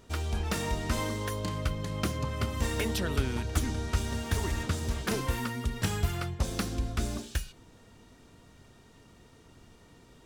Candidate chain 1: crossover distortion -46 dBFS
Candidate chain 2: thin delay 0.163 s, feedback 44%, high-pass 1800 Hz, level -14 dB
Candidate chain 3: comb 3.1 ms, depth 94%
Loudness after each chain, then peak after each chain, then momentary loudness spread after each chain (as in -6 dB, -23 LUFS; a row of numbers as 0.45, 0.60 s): -33.5, -32.0, -30.0 LUFS; -13.5, -13.5, -11.5 dBFS; 4, 3, 3 LU